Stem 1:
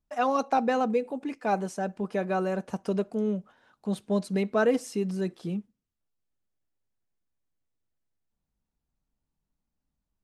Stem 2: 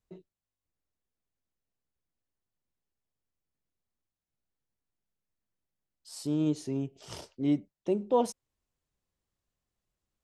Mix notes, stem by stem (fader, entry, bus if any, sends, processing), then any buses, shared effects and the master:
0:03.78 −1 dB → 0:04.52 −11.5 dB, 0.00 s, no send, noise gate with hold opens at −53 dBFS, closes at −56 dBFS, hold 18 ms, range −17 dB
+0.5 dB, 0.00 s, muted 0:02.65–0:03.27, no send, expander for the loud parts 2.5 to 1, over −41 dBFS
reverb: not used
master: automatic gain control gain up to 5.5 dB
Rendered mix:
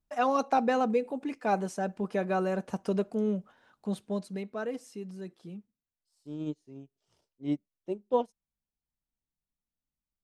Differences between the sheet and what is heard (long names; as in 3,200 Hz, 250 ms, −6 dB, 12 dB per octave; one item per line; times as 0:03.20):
stem 1: missing noise gate with hold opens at −53 dBFS, closes at −56 dBFS, hold 18 ms, range −17 dB
master: missing automatic gain control gain up to 5.5 dB